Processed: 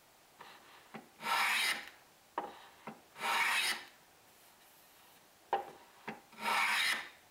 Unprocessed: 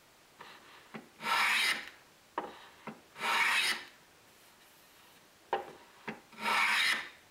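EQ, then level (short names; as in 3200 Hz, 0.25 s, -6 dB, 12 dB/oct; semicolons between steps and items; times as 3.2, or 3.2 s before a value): bell 760 Hz +6 dB 0.5 oct; high shelf 9200 Hz +7 dB; -4.0 dB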